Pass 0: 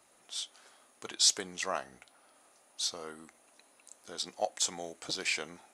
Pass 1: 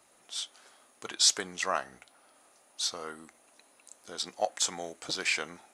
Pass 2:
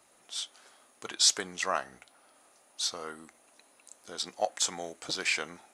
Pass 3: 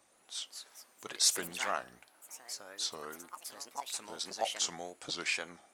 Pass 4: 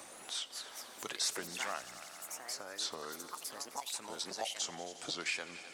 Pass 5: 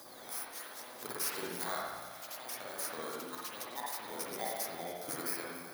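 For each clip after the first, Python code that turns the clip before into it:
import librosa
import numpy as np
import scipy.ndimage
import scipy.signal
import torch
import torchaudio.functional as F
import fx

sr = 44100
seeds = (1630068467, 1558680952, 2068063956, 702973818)

y1 = fx.dynamic_eq(x, sr, hz=1400.0, q=1.1, threshold_db=-49.0, ratio=4.0, max_db=5)
y1 = y1 * librosa.db_to_amplitude(1.5)
y2 = y1
y3 = fx.wow_flutter(y2, sr, seeds[0], rate_hz=2.1, depth_cents=140.0)
y3 = fx.echo_pitch(y3, sr, ms=275, semitones=4, count=3, db_per_echo=-6.0)
y3 = y3 * librosa.db_to_amplitude(-4.5)
y4 = fx.echo_heads(y3, sr, ms=88, heads='all three', feedback_pct=54, wet_db=-22)
y4 = fx.band_squash(y4, sr, depth_pct=70)
y4 = y4 * librosa.db_to_amplitude(-2.0)
y5 = fx.bit_reversed(y4, sr, seeds[1], block=16)
y5 = fx.rev_spring(y5, sr, rt60_s=1.1, pass_ms=(50, 58), chirp_ms=50, drr_db=-4.5)
y5 = y5 * librosa.db_to_amplitude(-1.5)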